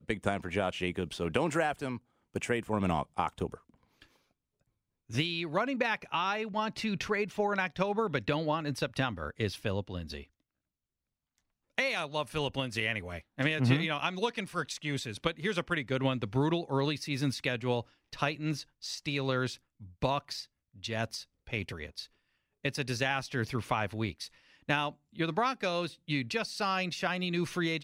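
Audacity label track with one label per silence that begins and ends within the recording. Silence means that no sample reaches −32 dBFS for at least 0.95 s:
3.540000	5.130000	silence
10.180000	11.780000	silence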